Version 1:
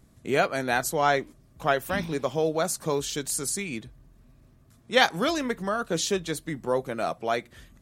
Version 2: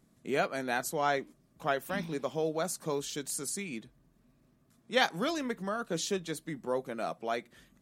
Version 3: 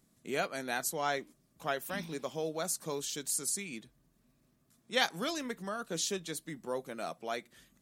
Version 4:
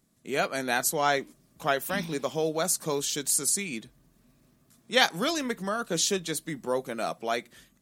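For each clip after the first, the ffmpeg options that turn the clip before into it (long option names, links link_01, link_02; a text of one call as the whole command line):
ffmpeg -i in.wav -af "lowshelf=frequency=130:width_type=q:width=1.5:gain=-8.5,volume=-7dB" out.wav
ffmpeg -i in.wav -af "highshelf=frequency=3100:gain=8.5,volume=-4.5dB" out.wav
ffmpeg -i in.wav -af "dynaudnorm=framelen=100:gausssize=7:maxgain=8dB" out.wav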